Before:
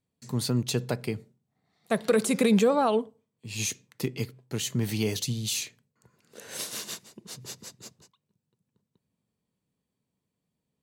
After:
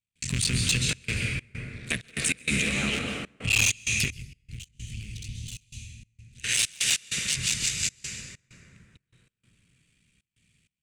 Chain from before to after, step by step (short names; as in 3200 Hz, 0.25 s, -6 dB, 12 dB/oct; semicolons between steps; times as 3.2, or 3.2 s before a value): cycle switcher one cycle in 3, muted; compressor 4:1, threshold -36 dBFS, peak gain reduction 15 dB; EQ curve 110 Hz 0 dB, 880 Hz -22 dB, 2500 Hz +14 dB, 4400 Hz +2 dB, 8800 Hz +8 dB, 14000 Hz -16 dB; plate-style reverb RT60 3.3 s, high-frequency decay 0.35×, pre-delay 0.115 s, DRR 0.5 dB; sine folder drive 7 dB, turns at -16.5 dBFS; 4.1–6.44 passive tone stack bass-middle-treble 10-0-1; limiter -19 dBFS, peak gain reduction 3.5 dB; step gate ".xxxxx.xx.xxx.x" 97 bpm -24 dB; gain +3.5 dB